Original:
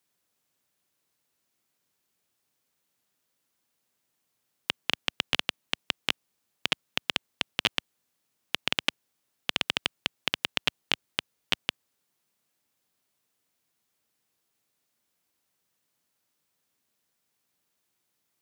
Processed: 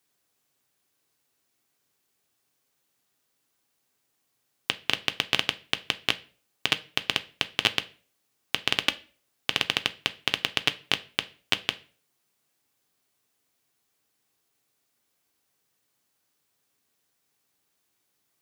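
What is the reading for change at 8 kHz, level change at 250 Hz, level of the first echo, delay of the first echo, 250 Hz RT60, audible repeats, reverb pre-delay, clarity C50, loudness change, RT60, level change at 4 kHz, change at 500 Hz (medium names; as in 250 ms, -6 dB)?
+3.0 dB, +2.5 dB, no echo, no echo, 0.45 s, no echo, 3 ms, 19.5 dB, +3.0 dB, 0.40 s, +3.0 dB, +3.0 dB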